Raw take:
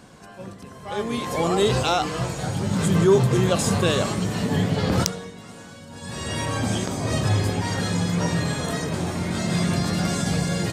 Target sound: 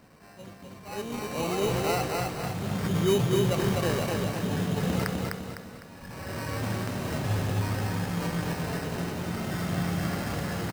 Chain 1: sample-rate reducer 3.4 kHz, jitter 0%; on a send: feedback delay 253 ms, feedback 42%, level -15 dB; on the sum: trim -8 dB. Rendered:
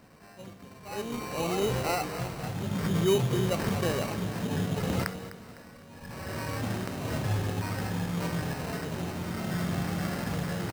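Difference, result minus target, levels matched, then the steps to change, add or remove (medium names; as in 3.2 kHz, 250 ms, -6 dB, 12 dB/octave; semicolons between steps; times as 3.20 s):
echo-to-direct -12 dB
change: feedback delay 253 ms, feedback 42%, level -3 dB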